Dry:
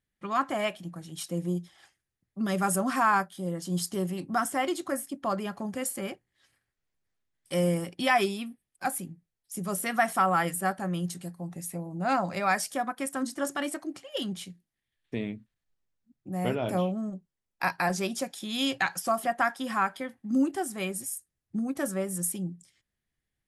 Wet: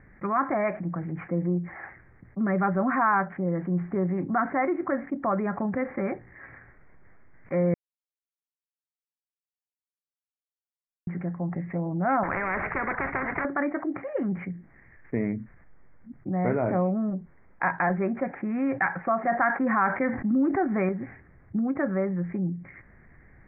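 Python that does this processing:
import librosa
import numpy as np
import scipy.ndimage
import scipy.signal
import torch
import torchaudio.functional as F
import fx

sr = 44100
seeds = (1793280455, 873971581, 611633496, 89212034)

y = fx.spectral_comp(x, sr, ratio=10.0, at=(12.23, 13.45))
y = fx.env_flatten(y, sr, amount_pct=50, at=(19.27, 20.89))
y = fx.edit(y, sr, fx.silence(start_s=7.74, length_s=3.33), tone=tone)
y = scipy.signal.sosfilt(scipy.signal.butter(16, 2200.0, 'lowpass', fs=sr, output='sos'), y)
y = fx.env_flatten(y, sr, amount_pct=50)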